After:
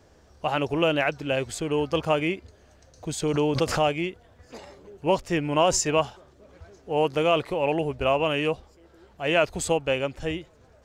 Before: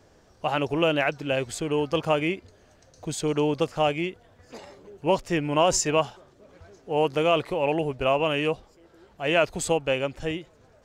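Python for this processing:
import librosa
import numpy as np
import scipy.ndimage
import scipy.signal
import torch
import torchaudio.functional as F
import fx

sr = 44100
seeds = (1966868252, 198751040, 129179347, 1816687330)

y = fx.peak_eq(x, sr, hz=71.0, db=13.0, octaves=0.21)
y = fx.pre_swell(y, sr, db_per_s=82.0, at=(3.22, 3.92))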